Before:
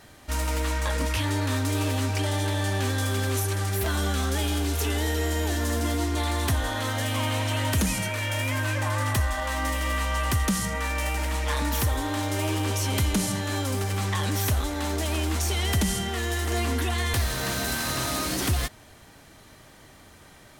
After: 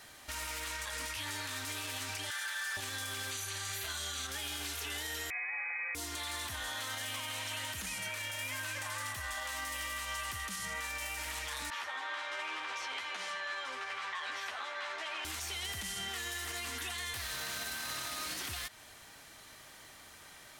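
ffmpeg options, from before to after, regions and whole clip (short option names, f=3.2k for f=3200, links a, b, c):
-filter_complex "[0:a]asettb=1/sr,asplit=3[a][b][c];[a]atrim=end=2.304[d];[b]atrim=start=2.3:end=2.77,asetpts=PTS-STARTPTS,afade=t=in:d=0.004:c=qsin,afade=t=out:st=0.466:d=0.004:c=qsin,highpass=f=1.5k:t=q:w=5.1,asoftclip=type=hard:threshold=-23.5dB[e];[c]atrim=start=2.766[f];[d][e]acrossfade=d=0.004:c1=hsin:c2=qsin[g];[g][f]acrossfade=d=0.004:c1=qsin:c2=hsin,asettb=1/sr,asplit=3[h][i][j];[h]atrim=end=3.314[k];[i]atrim=start=3.31:end=4.27,asetpts=PTS-STARTPTS,afade=t=in:d=0.004:c=qsin,afade=t=out:st=0.956:d=0.004:c=qsin,asuperstop=centerf=5300:order=4:qfactor=7.7,equalizer=f=5.7k:w=0.82:g=9.5,asplit=2[l][m];[m]adelay=39,volume=-4.5dB[n];[l][n]amix=inputs=2:normalize=0,atrim=end_sample=42336[o];[j]atrim=start=4.266[p];[k][o]acrossfade=d=0.004:c1=hsin:c2=qsin[q];[q][p]acrossfade=d=0.004:c1=qsin:c2=hsin,asettb=1/sr,asplit=3[r][s][t];[r]atrim=end=5.304[u];[s]atrim=start=5.3:end=5.95,asetpts=PTS-STARTPTS,afade=t=in:d=0.004:c=qsin,afade=t=out:st=0.646:d=0.004:c=qsin,equalizer=f=700:t=o:w=1.1:g=11,lowpass=f=2.2k:t=q:w=0.5098,lowpass=f=2.2k:t=q:w=0.6013,lowpass=f=2.2k:t=q:w=0.9,lowpass=f=2.2k:t=q:w=2.563,afreqshift=-2600[v];[t]atrim=start=5.946[w];[u][v]acrossfade=d=0.004:c1=hsin:c2=qsin[x];[x][w]acrossfade=d=0.004:c1=qsin:c2=hsin,asettb=1/sr,asplit=3[y][z][aa];[y]atrim=end=11.704[ab];[z]atrim=start=11.7:end=15.25,asetpts=PTS-STARTPTS,afade=t=in:d=0.004:c=qsin,afade=t=out:st=3.546:d=0.004:c=qsin,highpass=710,lowpass=2.3k,asplit=2[ac][ad];[ad]adelay=12,volume=-3dB[ae];[ac][ae]amix=inputs=2:normalize=0,atrim=end_sample=156555[af];[aa]atrim=start=15.246[ag];[ab][af]acrossfade=d=0.004:c1=hsin:c2=qsin[ah];[ah][ag]acrossfade=d=0.004:c1=qsin:c2=hsin,tiltshelf=f=650:g=-7,acrossover=split=1100|4100[ai][aj][ak];[ai]acompressor=threshold=-39dB:ratio=4[al];[aj]acompressor=threshold=-31dB:ratio=4[am];[ak]acompressor=threshold=-33dB:ratio=4[an];[al][am][an]amix=inputs=3:normalize=0,alimiter=limit=-24dB:level=0:latency=1:release=43,volume=-6dB"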